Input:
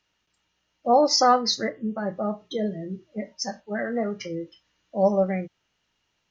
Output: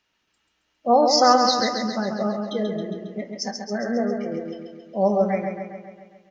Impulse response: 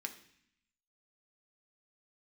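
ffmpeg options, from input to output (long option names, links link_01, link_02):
-filter_complex "[0:a]asettb=1/sr,asplit=3[link_01][link_02][link_03];[link_01]atrim=end=3.514[link_04];[link_02]atrim=start=3.51:end=4.32,asetpts=PTS-STARTPTS,afade=type=in:duration=0.004:curve=qsin,afade=type=out:start_time=0.806:duration=0.004:curve=qsin,lowpass=1300[link_05];[link_03]atrim=start=4.316[link_06];[link_04][link_05]acrossfade=duration=0.004:curve1=hsin:curve2=qsin[link_07];[link_07][link_06]acrossfade=duration=0.004:curve1=qsin:curve2=hsin,aecho=1:1:136|272|408|544|680|816|952|1088:0.531|0.313|0.185|0.109|0.0643|0.038|0.0224|0.0132,asplit=2[link_08][link_09];[1:a]atrim=start_sample=2205,highshelf=frequency=4400:gain=-12[link_10];[link_09][link_10]afir=irnorm=-1:irlink=0,volume=-3dB[link_11];[link_08][link_11]amix=inputs=2:normalize=0,volume=-1dB"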